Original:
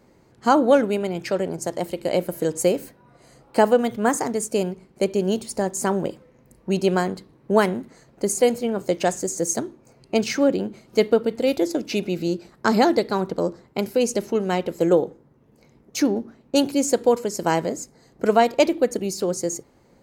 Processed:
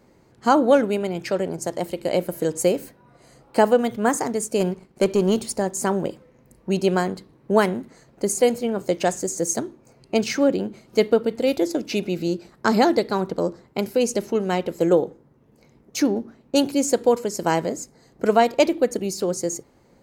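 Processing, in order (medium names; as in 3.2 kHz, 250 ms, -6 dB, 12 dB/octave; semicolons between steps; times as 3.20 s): 4.60–5.55 s: waveshaping leveller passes 1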